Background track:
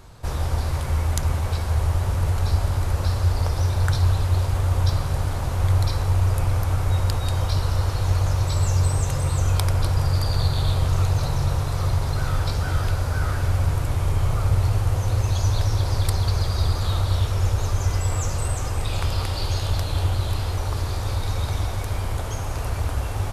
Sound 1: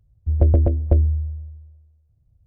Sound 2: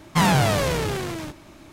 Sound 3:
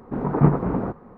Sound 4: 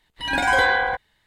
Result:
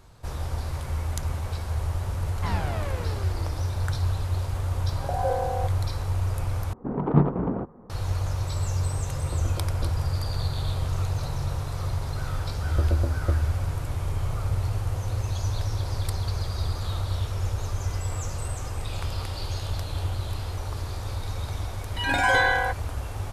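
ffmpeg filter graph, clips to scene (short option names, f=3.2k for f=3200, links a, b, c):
-filter_complex "[4:a]asplit=2[a][b];[1:a]asplit=2[c][d];[0:a]volume=-6.5dB[e];[2:a]highpass=200,lowpass=2.5k[f];[a]asuperpass=centerf=570:order=4:qfactor=2[g];[3:a]adynamicsmooth=sensitivity=0.5:basefreq=1.4k[h];[e]asplit=2[i][j];[i]atrim=end=6.734[k];[h]atrim=end=1.17,asetpts=PTS-STARTPTS,volume=-2.5dB[l];[j]atrim=start=7.896[m];[f]atrim=end=1.72,asetpts=PTS-STARTPTS,volume=-12dB,afade=t=in:d=0.004:c=hsin,afade=t=out:st=1.716:d=0.004:c=hsin,adelay=2270[n];[g]atrim=end=1.26,asetpts=PTS-STARTPTS,volume=-1dB,afade=t=in:d=0.004:c=hsin,afade=t=out:st=1.256:d=0.004:c=hsin,adelay=4710[o];[c]atrim=end=2.46,asetpts=PTS-STARTPTS,volume=-15.5dB,afade=t=in:d=0.004:c=hsin,afade=t=out:st=2.456:d=0.004:c=hsin,adelay=8910[p];[d]atrim=end=2.46,asetpts=PTS-STARTPTS,volume=-8.5dB,afade=t=in:d=0.004:c=hsin,afade=t=out:st=2.456:d=0.004:c=hsin,adelay=12370[q];[b]atrim=end=1.26,asetpts=PTS-STARTPTS,volume=-2.5dB,afade=t=in:d=0.004:c=hsin,afade=t=out:st=1.256:d=0.004:c=hsin,adelay=21760[r];[k][l]acrossfade=d=0.004:c1=hsin:c2=hsin[s];[s][m]acrossfade=d=0.004:c1=hsin:c2=hsin[t];[t][n][o][p][q][r]amix=inputs=6:normalize=0"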